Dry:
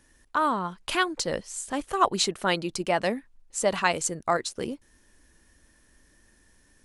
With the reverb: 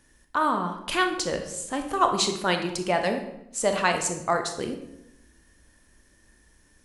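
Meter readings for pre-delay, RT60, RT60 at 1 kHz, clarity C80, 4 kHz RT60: 22 ms, 0.85 s, 0.75 s, 10.5 dB, 0.60 s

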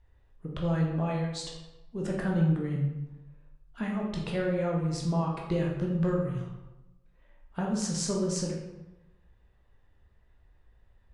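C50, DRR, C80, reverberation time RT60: 3.0 dB, −2.0 dB, 5.5 dB, 1.0 s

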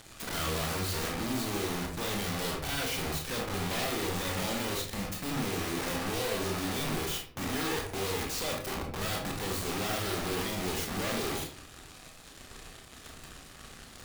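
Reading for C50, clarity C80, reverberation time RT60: 6.0 dB, 10.5 dB, 0.55 s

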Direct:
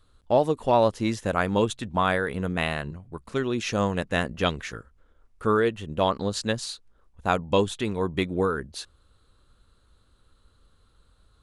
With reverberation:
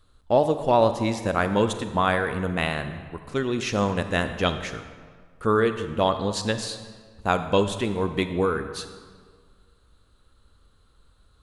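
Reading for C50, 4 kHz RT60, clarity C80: 9.5 dB, 1.2 s, 11.0 dB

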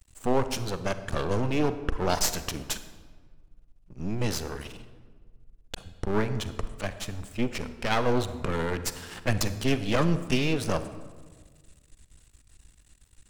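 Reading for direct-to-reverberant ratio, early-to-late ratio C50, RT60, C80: 11.0 dB, 12.0 dB, 1.5 s, 13.5 dB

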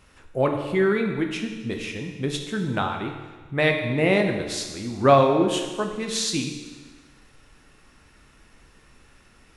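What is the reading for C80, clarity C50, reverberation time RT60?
7.0 dB, 6.0 dB, 1.4 s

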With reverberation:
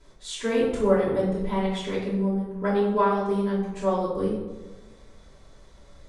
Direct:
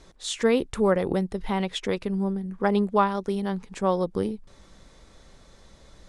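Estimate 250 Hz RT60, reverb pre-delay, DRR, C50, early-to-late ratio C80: 1.3 s, 3 ms, −11.5 dB, 2.0 dB, 5.0 dB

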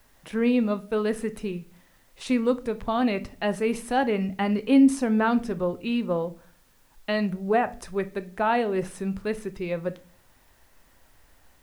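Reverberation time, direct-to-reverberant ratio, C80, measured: 0.40 s, 11.0 dB, 24.5 dB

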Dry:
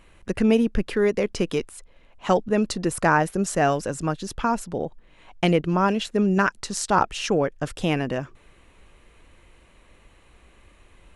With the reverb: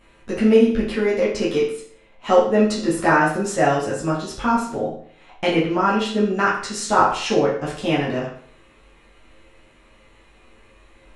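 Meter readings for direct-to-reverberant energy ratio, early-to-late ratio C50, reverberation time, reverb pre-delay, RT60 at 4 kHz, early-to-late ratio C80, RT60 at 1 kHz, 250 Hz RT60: −8.0 dB, 4.5 dB, 0.55 s, 9 ms, 0.50 s, 8.0 dB, 0.55 s, 0.55 s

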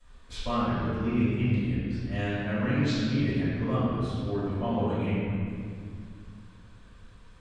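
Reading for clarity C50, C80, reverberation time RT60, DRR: −4.0 dB, −1.5 dB, 2.1 s, −17.5 dB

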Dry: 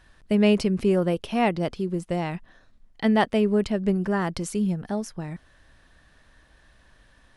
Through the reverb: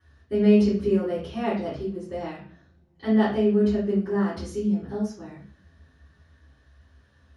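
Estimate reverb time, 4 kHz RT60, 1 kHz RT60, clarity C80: 0.45 s, 0.40 s, 0.45 s, 9.0 dB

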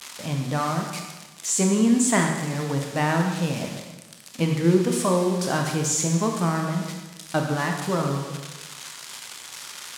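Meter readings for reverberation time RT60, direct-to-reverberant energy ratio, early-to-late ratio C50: 1.2 s, 2.0 dB, 4.0 dB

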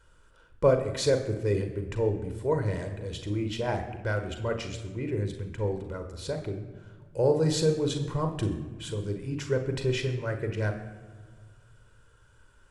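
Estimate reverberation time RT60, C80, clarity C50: 1.6 s, 11.0 dB, 8.5 dB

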